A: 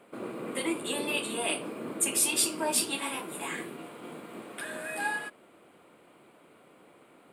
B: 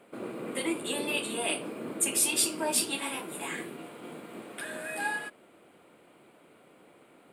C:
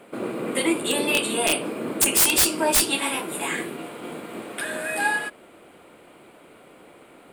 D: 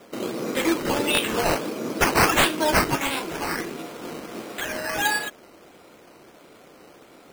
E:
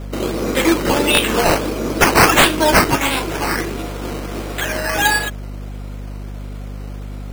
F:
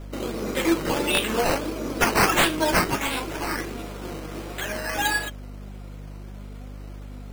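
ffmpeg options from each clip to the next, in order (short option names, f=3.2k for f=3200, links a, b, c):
-af "equalizer=f=1.1k:t=o:w=0.45:g=-3"
-af "aeval=exprs='(mod(8.91*val(0)+1,2)-1)/8.91':c=same,asubboost=boost=3:cutoff=71,volume=9dB"
-af "acrusher=samples=10:mix=1:aa=0.000001:lfo=1:lforange=6:lforate=1.5"
-af "aeval=exprs='val(0)+0.0178*(sin(2*PI*50*n/s)+sin(2*PI*2*50*n/s)/2+sin(2*PI*3*50*n/s)/3+sin(2*PI*4*50*n/s)/4+sin(2*PI*5*50*n/s)/5)':c=same,volume=7.5dB"
-af "flanger=delay=2.9:depth=3.6:regen=70:speed=0.58:shape=triangular,volume=-4dB"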